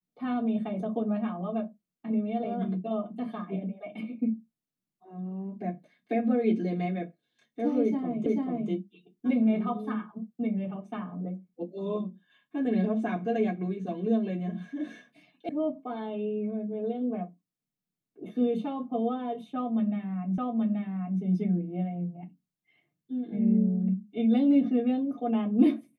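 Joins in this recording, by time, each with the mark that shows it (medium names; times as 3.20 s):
8.26 s: repeat of the last 0.44 s
15.49 s: sound stops dead
20.38 s: repeat of the last 0.83 s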